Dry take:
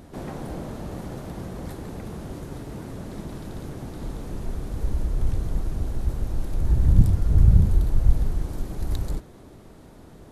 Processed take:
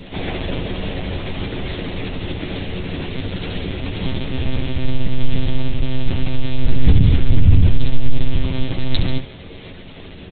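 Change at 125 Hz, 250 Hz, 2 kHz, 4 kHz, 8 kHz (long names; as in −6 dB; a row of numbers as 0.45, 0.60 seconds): +5.0 dB, +8.5 dB, +16.5 dB, +20.0 dB, can't be measured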